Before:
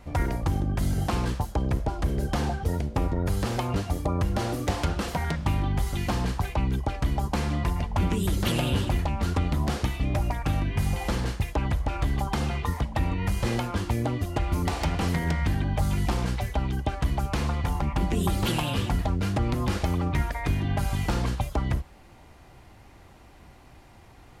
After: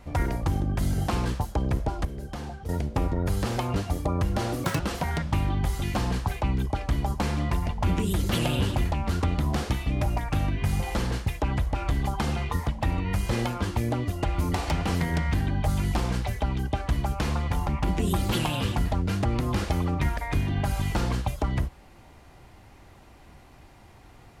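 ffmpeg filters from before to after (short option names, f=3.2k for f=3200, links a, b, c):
-filter_complex "[0:a]asplit=5[a][b][c][d][e];[a]atrim=end=2.052[f];[b]atrim=start=2.048:end=2.692,asetpts=PTS-STARTPTS,volume=-9dB[g];[c]atrim=start=2.688:end=4.644[h];[d]atrim=start=4.64:end=4.93,asetpts=PTS-STARTPTS,asetrate=82467,aresample=44100,atrim=end_sample=6839,asetpts=PTS-STARTPTS[i];[e]atrim=start=4.926[j];[f][g]acrossfade=d=0.004:c1=hsin:c2=hsin[k];[k][h]acrossfade=d=0.004:c1=hsin:c2=hsin[l];[l][i]acrossfade=d=0.004:c1=hsin:c2=hsin[m];[m][j]acrossfade=d=0.004:c1=hsin:c2=hsin"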